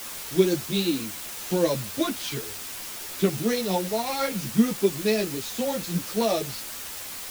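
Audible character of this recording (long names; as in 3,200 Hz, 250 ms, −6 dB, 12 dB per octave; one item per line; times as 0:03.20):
tremolo triangle 8.1 Hz, depth 45%
a quantiser's noise floor 6 bits, dither triangular
a shimmering, thickened sound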